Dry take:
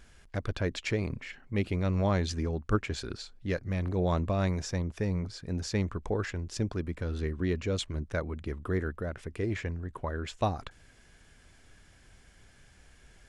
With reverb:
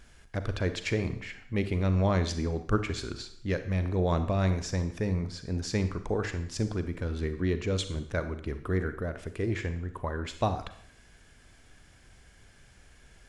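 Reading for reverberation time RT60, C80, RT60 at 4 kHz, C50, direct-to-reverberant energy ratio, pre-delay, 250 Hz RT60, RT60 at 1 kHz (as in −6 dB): 0.65 s, 14.0 dB, 0.65 s, 11.0 dB, 9.5 dB, 35 ms, 0.65 s, 0.65 s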